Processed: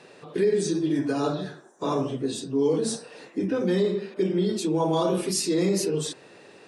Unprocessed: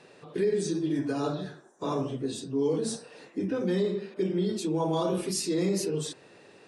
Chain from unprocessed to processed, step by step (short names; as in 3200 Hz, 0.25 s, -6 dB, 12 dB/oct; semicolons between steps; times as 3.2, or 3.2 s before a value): low shelf 76 Hz -9.5 dB; gain +4.5 dB